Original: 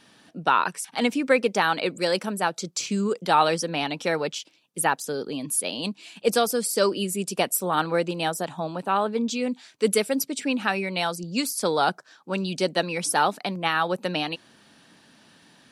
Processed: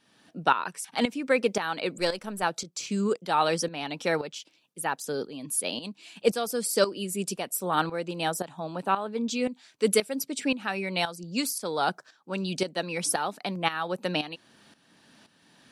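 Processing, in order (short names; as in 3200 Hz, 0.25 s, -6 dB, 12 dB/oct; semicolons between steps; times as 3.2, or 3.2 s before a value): 1.98–2.43 half-wave gain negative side -3 dB; tremolo saw up 1.9 Hz, depth 75%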